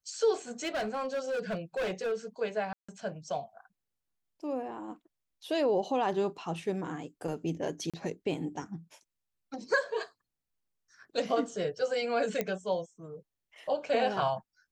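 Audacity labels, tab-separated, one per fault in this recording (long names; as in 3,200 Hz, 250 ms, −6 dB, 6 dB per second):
0.640000	2.130000	clipping −29 dBFS
2.730000	2.880000	drop-out 155 ms
7.900000	7.940000	drop-out 36 ms
12.410000	12.410000	click −16 dBFS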